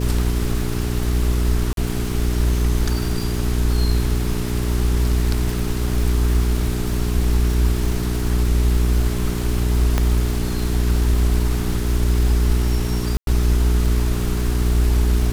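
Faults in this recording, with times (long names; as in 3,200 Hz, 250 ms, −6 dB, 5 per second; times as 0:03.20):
surface crackle 500 per second −27 dBFS
mains hum 60 Hz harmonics 7 −23 dBFS
0:01.73–0:01.77: drop-out 42 ms
0:09.98: click −5 dBFS
0:13.17–0:13.27: drop-out 102 ms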